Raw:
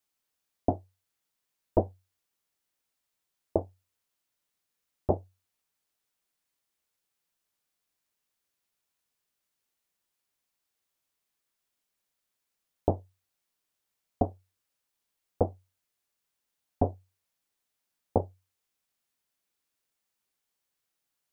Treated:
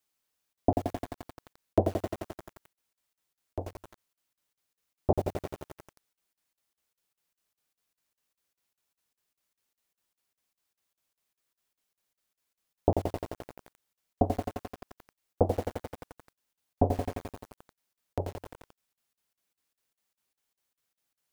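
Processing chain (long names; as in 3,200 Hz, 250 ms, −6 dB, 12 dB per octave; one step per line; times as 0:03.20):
regular buffer underruns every 0.20 s, samples 2,048, zero, from 0:00.53
feedback echo at a low word length 87 ms, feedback 80%, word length 7 bits, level −6 dB
level +1.5 dB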